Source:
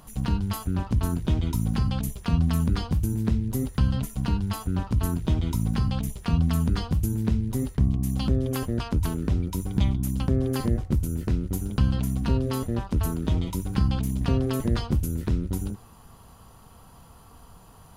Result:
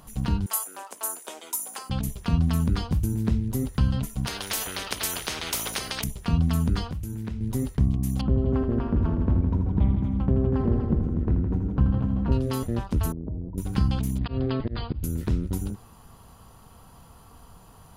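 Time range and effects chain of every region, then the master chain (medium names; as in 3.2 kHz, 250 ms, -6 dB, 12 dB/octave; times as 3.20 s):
0.46–1.90 s: high-pass 510 Hz 24 dB/octave + resonant high shelf 5.9 kHz +11 dB, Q 1.5
4.27–6.04 s: band-stop 7.4 kHz, Q 11 + small resonant body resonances 420/3100 Hz, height 15 dB, ringing for 25 ms + spectrum-flattening compressor 10:1
6.86–7.41 s: peaking EQ 1.9 kHz +5 dB 1.6 oct + compression 3:1, threshold -31 dBFS
8.21–12.32 s: low-pass 1.2 kHz + multi-head delay 81 ms, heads all three, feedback 45%, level -9.5 dB
13.12–13.58 s: inverse Chebyshev low-pass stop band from 2.1 kHz, stop band 60 dB + compression 3:1, threshold -31 dBFS
14.18–15.04 s: slow attack 147 ms + brick-wall FIR low-pass 5 kHz
whole clip: none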